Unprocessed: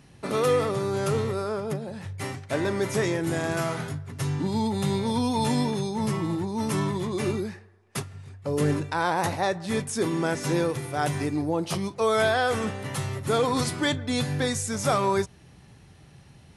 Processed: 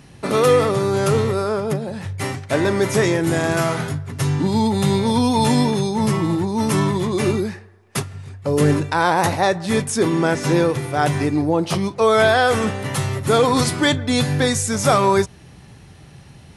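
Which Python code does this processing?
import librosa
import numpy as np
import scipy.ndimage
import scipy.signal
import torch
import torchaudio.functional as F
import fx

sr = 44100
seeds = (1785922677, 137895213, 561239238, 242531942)

y = fx.high_shelf(x, sr, hz=6800.0, db=-6.5, at=(9.96, 12.29))
y = F.gain(torch.from_numpy(y), 8.0).numpy()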